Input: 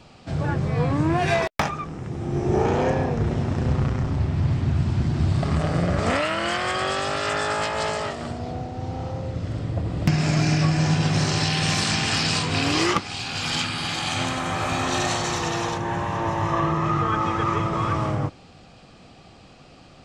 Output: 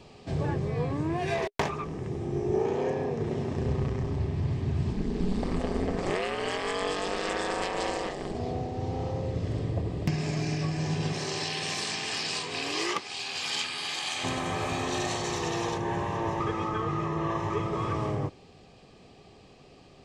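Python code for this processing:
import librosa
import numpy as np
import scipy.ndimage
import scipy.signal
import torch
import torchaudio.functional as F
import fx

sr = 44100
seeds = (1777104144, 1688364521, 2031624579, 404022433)

y = fx.doppler_dist(x, sr, depth_ms=0.47, at=(1.37, 2.06))
y = fx.highpass(y, sr, hz=120.0, slope=12, at=(2.57, 3.54))
y = fx.ring_mod(y, sr, carrier_hz=94.0, at=(4.92, 8.35))
y = fx.highpass(y, sr, hz=fx.line((11.12, 350.0), (14.23, 1300.0)), slope=6, at=(11.12, 14.23), fade=0.02)
y = fx.edit(y, sr, fx.reverse_span(start_s=16.4, length_s=1.1), tone=tone)
y = fx.peak_eq(y, sr, hz=410.0, db=10.5, octaves=0.29)
y = fx.notch(y, sr, hz=1400.0, q=5.4)
y = fx.rider(y, sr, range_db=4, speed_s=0.5)
y = F.gain(torch.from_numpy(y), -6.5).numpy()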